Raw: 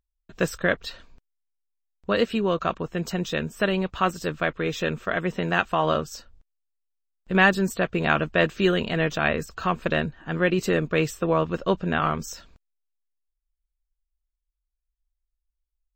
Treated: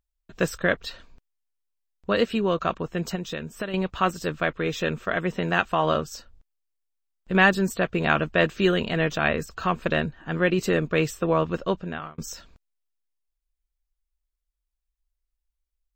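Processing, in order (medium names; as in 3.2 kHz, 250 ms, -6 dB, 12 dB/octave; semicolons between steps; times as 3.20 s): 3.15–3.74 s: compression 4:1, threshold -29 dBFS, peak gain reduction 10.5 dB; 11.55–12.18 s: fade out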